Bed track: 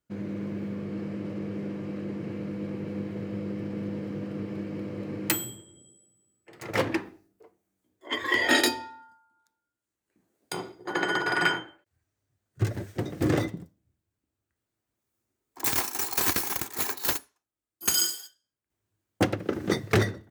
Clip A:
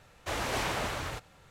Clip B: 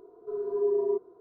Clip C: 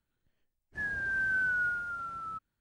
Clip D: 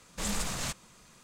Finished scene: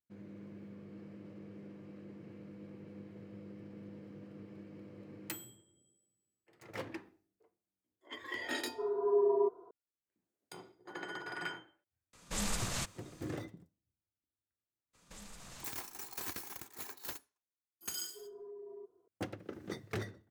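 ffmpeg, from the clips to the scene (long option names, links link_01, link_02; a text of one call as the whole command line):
ffmpeg -i bed.wav -i cue0.wav -i cue1.wav -i cue2.wav -i cue3.wav -filter_complex "[2:a]asplit=2[link_01][link_02];[4:a]asplit=2[link_03][link_04];[0:a]volume=-16.5dB[link_05];[link_01]equalizer=frequency=930:width_type=o:width=1.5:gain=13.5[link_06];[link_03]aresample=32000,aresample=44100[link_07];[link_04]alimiter=level_in=7.5dB:limit=-24dB:level=0:latency=1:release=300,volume=-7.5dB[link_08];[link_02]acompressor=threshold=-29dB:ratio=6:attack=3.2:release=140:knee=1:detection=peak[link_09];[link_06]atrim=end=1.2,asetpts=PTS-STARTPTS,volume=-6.5dB,afade=type=in:duration=0.004:curve=hsin,afade=type=out:start_time=1.196:duration=0.004:curve=hsin,adelay=8510[link_10];[link_07]atrim=end=1.23,asetpts=PTS-STARTPTS,volume=-3dB,afade=type=in:duration=0.004:curve=hsin,afade=type=out:start_time=1.226:duration=0.004:curve=hsin,adelay=12130[link_11];[link_08]atrim=end=1.23,asetpts=PTS-STARTPTS,volume=-10dB,afade=type=in:duration=0.02,afade=type=out:start_time=1.21:duration=0.02,adelay=14930[link_12];[link_09]atrim=end=1.2,asetpts=PTS-STARTPTS,volume=-17dB,afade=type=in:duration=0.004:curve=hsin,afade=type=out:start_time=1.196:duration=0.004:curve=hsin,adelay=17880[link_13];[link_05][link_10][link_11][link_12][link_13]amix=inputs=5:normalize=0" out.wav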